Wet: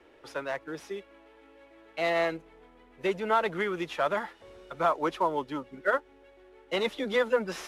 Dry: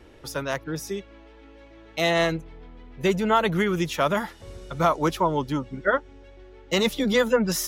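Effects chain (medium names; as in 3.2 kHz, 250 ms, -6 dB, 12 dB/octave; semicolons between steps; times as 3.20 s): CVSD coder 64 kbps; three-band isolator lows -16 dB, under 290 Hz, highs -14 dB, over 3.6 kHz; trim -3.5 dB; AAC 96 kbps 44.1 kHz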